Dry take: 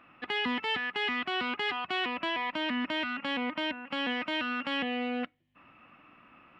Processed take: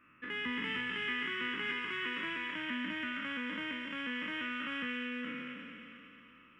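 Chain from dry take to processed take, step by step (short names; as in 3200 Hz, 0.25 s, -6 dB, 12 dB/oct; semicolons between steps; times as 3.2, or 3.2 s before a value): spectral trails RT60 2.88 s; fixed phaser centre 1800 Hz, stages 4; thin delay 0.226 s, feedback 57%, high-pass 2400 Hz, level -4 dB; gain -6 dB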